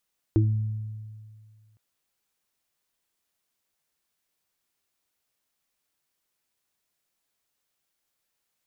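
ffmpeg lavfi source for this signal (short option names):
-f lavfi -i "aevalsrc='0.141*pow(10,-3*t/2.01)*sin(2*PI*108*t)+0.0224*pow(10,-3*t/1.39)*sin(2*PI*216*t)+0.158*pow(10,-3*t/0.23)*sin(2*PI*324*t)':d=1.41:s=44100"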